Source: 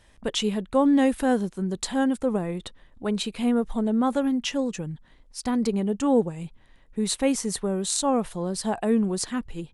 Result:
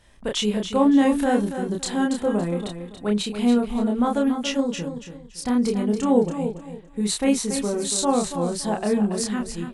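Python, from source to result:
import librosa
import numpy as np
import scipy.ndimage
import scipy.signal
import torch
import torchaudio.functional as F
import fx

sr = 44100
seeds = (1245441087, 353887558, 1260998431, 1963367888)

p1 = fx.doubler(x, sr, ms=29.0, db=-2.5)
y = p1 + fx.echo_feedback(p1, sr, ms=282, feedback_pct=26, wet_db=-9.0, dry=0)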